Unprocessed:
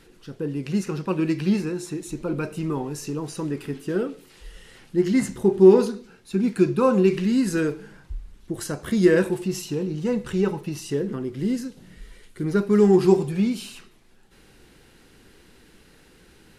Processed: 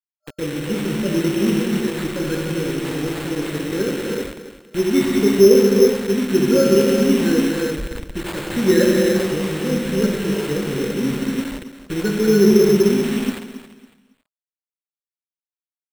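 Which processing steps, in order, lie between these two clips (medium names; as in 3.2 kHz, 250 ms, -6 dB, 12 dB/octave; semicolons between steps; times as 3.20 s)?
peaking EQ 820 Hz +8 dB 0.24 oct; gated-style reverb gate 440 ms flat, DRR -3 dB; bit crusher 5-bit; FFT band-reject 590–1300 Hz; on a send: feedback delay 288 ms, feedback 28%, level -13 dB; on the sum: sample-and-hold 8×; speed mistake 24 fps film run at 25 fps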